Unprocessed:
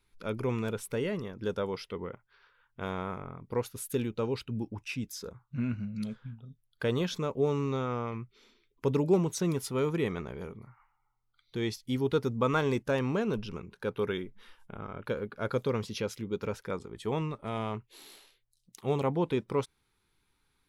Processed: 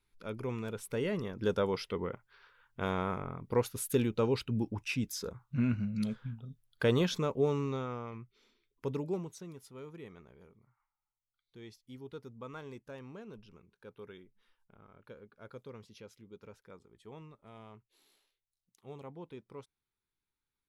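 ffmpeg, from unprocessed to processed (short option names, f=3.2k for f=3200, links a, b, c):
-af "volume=2dB,afade=t=in:st=0.71:d=0.74:silence=0.398107,afade=t=out:st=6.92:d=1.08:silence=0.334965,afade=t=out:st=8.88:d=0.58:silence=0.298538"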